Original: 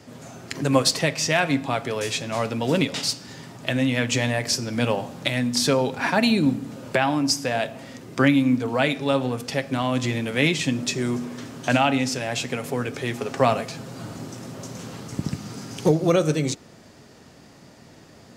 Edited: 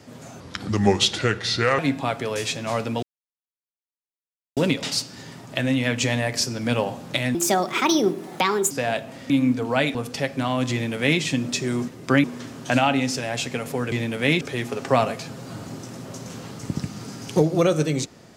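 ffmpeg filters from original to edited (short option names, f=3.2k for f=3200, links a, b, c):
-filter_complex "[0:a]asplit=12[a][b][c][d][e][f][g][h][i][j][k][l];[a]atrim=end=0.404[m];[b]atrim=start=0.4:end=1.44,asetpts=PTS-STARTPTS,asetrate=33075,aresample=44100[n];[c]atrim=start=1.436:end=2.68,asetpts=PTS-STARTPTS,afade=t=out:st=1.24:d=0.004:c=hsin,apad=pad_dur=1.54[o];[d]atrim=start=2.68:end=5.464,asetpts=PTS-STARTPTS,afade=t=in:d=0.004:c=hsin[p];[e]atrim=start=5.46:end=7.38,asetpts=PTS-STARTPTS,asetrate=62181,aresample=44100,atrim=end_sample=60051,asetpts=PTS-STARTPTS[q];[f]atrim=start=7.376:end=7.972[r];[g]atrim=start=8.328:end=8.982[s];[h]atrim=start=9.288:end=11.222[t];[i]atrim=start=7.968:end=8.332[u];[j]atrim=start=11.218:end=12.902[v];[k]atrim=start=10.058:end=10.552[w];[l]atrim=start=12.898[x];[m][n]acrossfade=d=0.004:c1=hsin:c2=hsin[y];[o][p]concat=n=2:v=0:a=1[z];[y][z]acrossfade=d=0.004:c1=hsin:c2=hsin[aa];[aa][q]acrossfade=d=0.004:c1=hsin:c2=hsin[ab];[ab][r]acrossfade=d=0.004:c1=hsin:c2=hsin[ac];[ac][s]acrossfade=d=0.004:c1=hsin:c2=hsin[ad];[ad][t]acrossfade=d=0.004:c1=hsin:c2=hsin[ae];[ae][u]acrossfade=d=0.004:c1=hsin:c2=hsin[af];[af][v]acrossfade=d=0.004:c1=hsin:c2=hsin[ag];[ag][w]acrossfade=d=0.004:c1=hsin:c2=hsin[ah];[ah][x]acrossfade=d=0.004:c1=hsin:c2=hsin"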